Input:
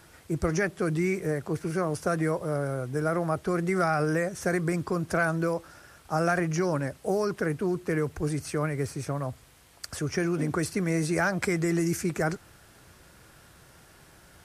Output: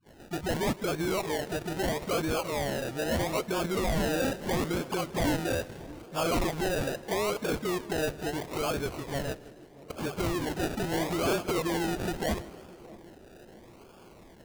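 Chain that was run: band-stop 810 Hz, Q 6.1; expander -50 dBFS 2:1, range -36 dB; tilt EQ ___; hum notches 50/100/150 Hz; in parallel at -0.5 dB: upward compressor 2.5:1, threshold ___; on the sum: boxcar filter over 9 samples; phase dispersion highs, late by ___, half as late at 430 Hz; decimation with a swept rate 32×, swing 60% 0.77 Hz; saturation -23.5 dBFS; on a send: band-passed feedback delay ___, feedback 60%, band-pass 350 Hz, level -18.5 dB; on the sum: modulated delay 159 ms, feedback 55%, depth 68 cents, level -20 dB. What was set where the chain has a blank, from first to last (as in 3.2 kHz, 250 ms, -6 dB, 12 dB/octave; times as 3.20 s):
+4.5 dB/octave, -49 dBFS, 64 ms, 631 ms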